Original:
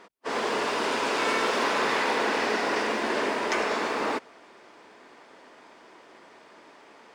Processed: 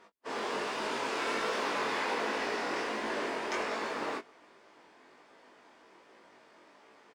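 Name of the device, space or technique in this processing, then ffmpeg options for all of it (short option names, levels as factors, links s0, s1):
double-tracked vocal: -filter_complex "[0:a]asplit=2[s0][s1];[s1]adelay=20,volume=0.224[s2];[s0][s2]amix=inputs=2:normalize=0,flanger=delay=18:depth=4.8:speed=1.3,volume=0.596"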